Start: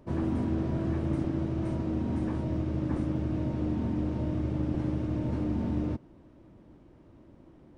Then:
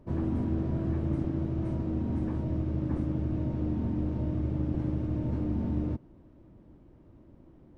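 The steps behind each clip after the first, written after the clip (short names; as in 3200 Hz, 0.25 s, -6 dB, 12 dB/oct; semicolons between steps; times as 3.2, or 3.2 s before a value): tilt -1.5 dB/oct; gain -4 dB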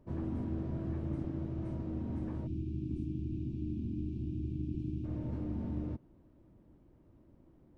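spectral gain 2.47–5.04, 390–2300 Hz -26 dB; gain -7 dB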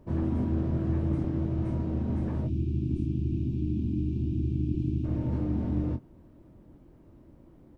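doubler 24 ms -8.5 dB; gain +7.5 dB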